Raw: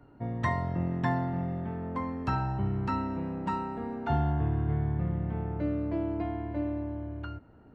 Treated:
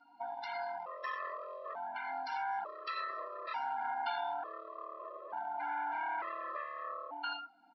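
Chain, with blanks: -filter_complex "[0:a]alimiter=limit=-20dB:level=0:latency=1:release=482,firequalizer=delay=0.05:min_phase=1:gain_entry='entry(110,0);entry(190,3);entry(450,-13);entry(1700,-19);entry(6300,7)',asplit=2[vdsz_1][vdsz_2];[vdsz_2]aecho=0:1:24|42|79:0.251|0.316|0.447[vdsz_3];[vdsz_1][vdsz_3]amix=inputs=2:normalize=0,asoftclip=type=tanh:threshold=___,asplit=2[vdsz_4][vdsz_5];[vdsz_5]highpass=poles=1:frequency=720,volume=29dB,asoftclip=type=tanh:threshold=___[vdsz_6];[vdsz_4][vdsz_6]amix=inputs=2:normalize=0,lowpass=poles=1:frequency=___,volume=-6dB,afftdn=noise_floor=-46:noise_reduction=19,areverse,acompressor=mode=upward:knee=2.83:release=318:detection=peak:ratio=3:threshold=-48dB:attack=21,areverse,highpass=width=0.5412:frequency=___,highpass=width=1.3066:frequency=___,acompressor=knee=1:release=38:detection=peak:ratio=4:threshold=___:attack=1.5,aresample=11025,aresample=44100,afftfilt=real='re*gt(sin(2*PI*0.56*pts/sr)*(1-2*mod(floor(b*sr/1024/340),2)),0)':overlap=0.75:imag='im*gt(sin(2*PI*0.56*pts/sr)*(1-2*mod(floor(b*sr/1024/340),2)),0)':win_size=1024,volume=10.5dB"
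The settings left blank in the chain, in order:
-23.5dB, -24dB, 3900, 810, 810, -42dB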